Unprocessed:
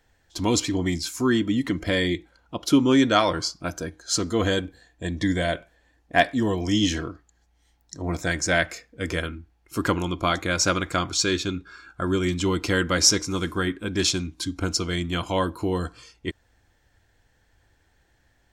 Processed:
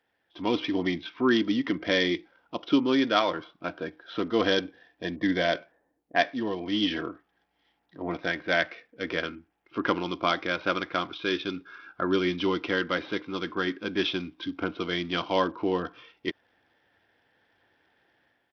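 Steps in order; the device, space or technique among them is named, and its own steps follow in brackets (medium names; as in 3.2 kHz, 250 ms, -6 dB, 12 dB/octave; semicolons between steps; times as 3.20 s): 5.16–6.16 s: level-controlled noise filter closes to 470 Hz, open at -21 dBFS; Bluetooth headset (high-pass 240 Hz 12 dB/octave; level rider gain up to 8 dB; resampled via 8 kHz; trim -7 dB; SBC 64 kbps 44.1 kHz)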